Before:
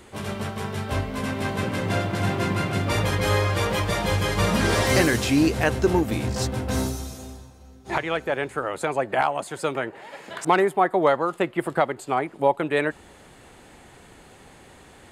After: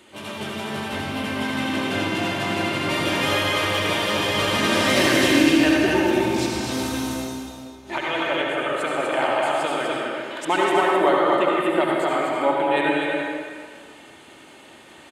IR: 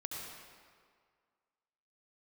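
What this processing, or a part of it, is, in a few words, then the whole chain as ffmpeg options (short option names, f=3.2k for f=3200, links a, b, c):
stadium PA: -filter_complex "[0:a]highpass=150,equalizer=f=3k:t=o:w=0.72:g=7.5,aecho=1:1:3.3:0.38,aecho=1:1:195.3|247.8:0.282|0.631[a];[1:a]atrim=start_sample=2205[b];[a][b]afir=irnorm=-1:irlink=0"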